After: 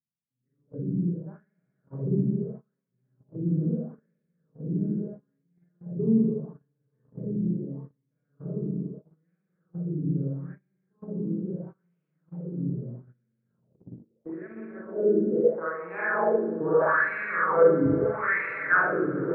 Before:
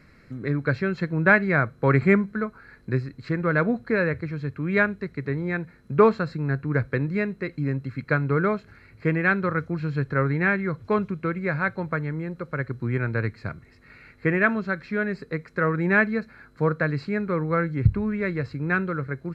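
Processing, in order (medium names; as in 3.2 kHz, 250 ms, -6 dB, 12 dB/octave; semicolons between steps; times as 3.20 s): low-pass sweep 170 Hz -> 1.5 kHz, 13.39–16.94 s; in parallel at +2 dB: compression 8:1, threshold -31 dBFS, peak gain reduction 19 dB; 11.64–12.46 s: on the sum: hysteresis with a dead band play -48.5 dBFS; hum notches 50/100/150/200/250 Hz; band-passed feedback delay 853 ms, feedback 81%, band-pass 710 Hz, level -10 dB; spring tank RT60 2.1 s, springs 40/58 ms, chirp 20 ms, DRR -9.5 dB; wah-wah 0.77 Hz 290–2600 Hz, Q 3.4; dynamic bell 130 Hz, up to +3 dB, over -41 dBFS, Q 5.5; gate -36 dBFS, range -25 dB; 14.26–14.85 s: three bands compressed up and down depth 40%; trim -3.5 dB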